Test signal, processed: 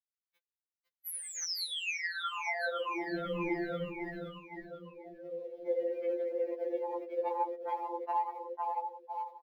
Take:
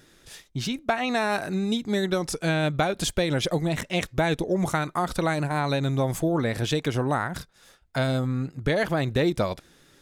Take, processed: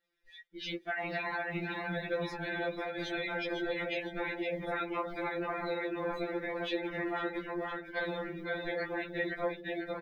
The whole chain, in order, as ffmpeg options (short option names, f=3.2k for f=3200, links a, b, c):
-filter_complex "[0:a]bandreject=f=500:w=12,aecho=1:1:3.8:0.69,asplit=2[a][b];[b]aecho=0:1:504|1008|1512|2016|2520|3024:0.631|0.309|0.151|0.0742|0.0364|0.0178[c];[a][c]amix=inputs=2:normalize=0,alimiter=limit=-15dB:level=0:latency=1:release=30,afftfilt=real='hypot(re,im)*cos(2*PI*random(0))':imag='hypot(re,im)*sin(2*PI*random(1))':win_size=512:overlap=0.75,flanger=delay=2.1:depth=1.5:regen=-76:speed=1.3:shape=triangular,acrusher=bits=3:mode=log:mix=0:aa=0.000001,equalizer=f=125:t=o:w=1:g=-6,equalizer=f=500:t=o:w=1:g=7,equalizer=f=2k:t=o:w=1:g=10,equalizer=f=4k:t=o:w=1:g=5,equalizer=f=8k:t=o:w=1:g=-10,acompressor=threshold=-28dB:ratio=10,afftdn=nr=20:nf=-42,adynamicequalizer=threshold=0.00316:dfrequency=3700:dqfactor=1.1:tfrequency=3700:tqfactor=1.1:attack=5:release=100:ratio=0.375:range=1.5:mode=cutabove:tftype=bell,afftfilt=real='re*2.83*eq(mod(b,8),0)':imag='im*2.83*eq(mod(b,8),0)':win_size=2048:overlap=0.75"